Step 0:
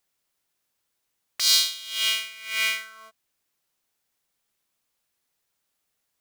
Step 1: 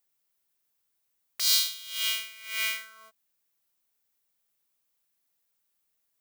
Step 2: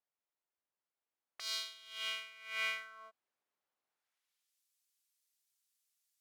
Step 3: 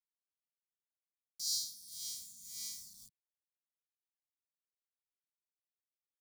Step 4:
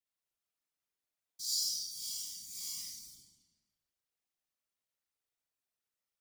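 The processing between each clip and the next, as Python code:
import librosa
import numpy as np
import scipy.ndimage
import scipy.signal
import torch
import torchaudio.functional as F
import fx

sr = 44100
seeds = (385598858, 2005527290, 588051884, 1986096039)

y1 = fx.high_shelf(x, sr, hz=12000.0, db=11.5)
y1 = y1 * librosa.db_to_amplitude(-6.0)
y2 = fx.rider(y1, sr, range_db=10, speed_s=2.0)
y2 = fx.filter_sweep_bandpass(y2, sr, from_hz=760.0, to_hz=6500.0, start_s=3.86, end_s=4.59, q=0.7)
y2 = y2 * librosa.db_to_amplitude(-1.5)
y3 = np.where(np.abs(y2) >= 10.0 ** (-50.0 / 20.0), y2, 0.0)
y3 = scipy.signal.sosfilt(scipy.signal.cheby2(4, 40, [310.0, 2900.0], 'bandstop', fs=sr, output='sos'), y3)
y3 = fx.notch_comb(y3, sr, f0_hz=1300.0)
y3 = y3 * librosa.db_to_amplitude(12.5)
y4 = fx.rev_freeverb(y3, sr, rt60_s=1.3, hf_ratio=0.9, predelay_ms=15, drr_db=-5.0)
y4 = fx.whisperise(y4, sr, seeds[0])
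y4 = y4 * librosa.db_to_amplitude(-1.5)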